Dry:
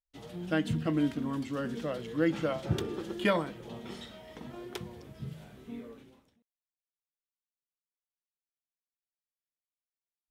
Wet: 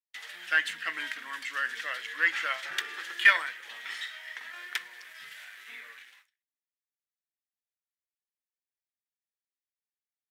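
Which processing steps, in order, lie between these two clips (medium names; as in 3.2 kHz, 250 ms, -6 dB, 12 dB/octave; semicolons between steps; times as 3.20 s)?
gate with hold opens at -52 dBFS; waveshaping leveller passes 1; resonant high-pass 1.8 kHz, resonance Q 4.6; tape noise reduction on one side only encoder only; trim +2.5 dB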